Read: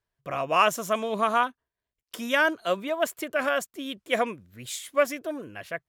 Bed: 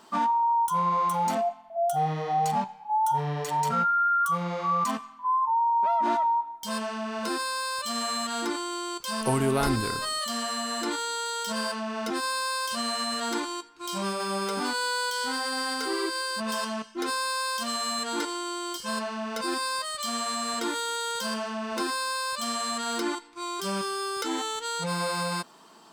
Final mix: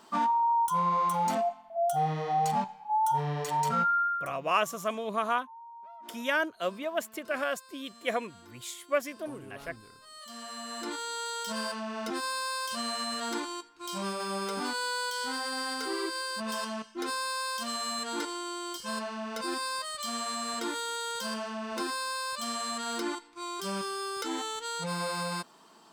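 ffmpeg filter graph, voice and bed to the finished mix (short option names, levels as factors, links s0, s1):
-filter_complex "[0:a]adelay=3950,volume=0.531[s0];[1:a]volume=7.94,afade=t=out:st=3.94:d=0.39:silence=0.0794328,afade=t=in:st=10.03:d=1.21:silence=0.1[s1];[s0][s1]amix=inputs=2:normalize=0"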